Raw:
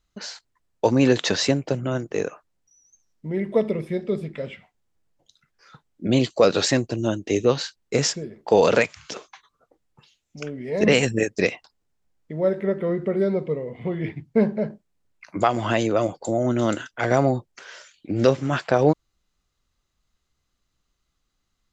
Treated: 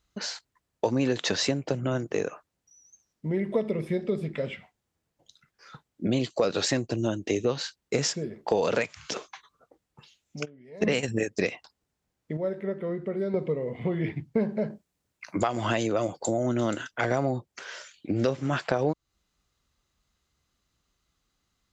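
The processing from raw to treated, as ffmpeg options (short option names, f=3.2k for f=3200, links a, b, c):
-filter_complex "[0:a]asplit=3[a][b][c];[a]afade=t=out:st=10.44:d=0.02[d];[b]agate=range=-20dB:threshold=-21dB:ratio=16:release=100:detection=peak,afade=t=in:st=10.44:d=0.02,afade=t=out:st=11.07:d=0.02[e];[c]afade=t=in:st=11.07:d=0.02[f];[d][e][f]amix=inputs=3:normalize=0,asettb=1/sr,asplit=3[g][h][i];[g]atrim=end=14.494[j];[h]atrim=start=14.49:end=16.54,asetpts=PTS-STARTPTS,afade=t=in:d=0.004:c=qsin,afade=t=out:st=2.046:d=0.004:c=qsin,highshelf=f=4.7k:g=5[k];[i]atrim=start=16.536[l];[j][k]acrossfade=d=0.004:c1=hsin:c2=qsin[m];[m][l]acrossfade=d=0.004:c1=qsin:c2=hsin,asplit=3[n][o][p];[n]atrim=end=12.372[q];[o]atrim=start=12.368:end=13.342,asetpts=PTS-STARTPTS,volume=-8.5dB[r];[p]atrim=start=13.338[s];[q][r]acrossfade=d=0.004:c1=hsin:c2=hsin[t];[t][s]acrossfade=d=0.004:c1=hsin:c2=hsin,highpass=43,acompressor=threshold=-26dB:ratio=3,volume=1.5dB"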